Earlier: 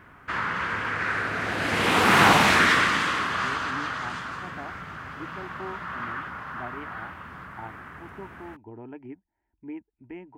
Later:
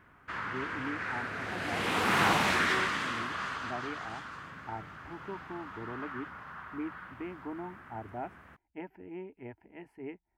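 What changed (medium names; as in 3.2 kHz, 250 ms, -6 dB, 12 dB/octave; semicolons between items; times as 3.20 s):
speech: entry -2.90 s; background -9.0 dB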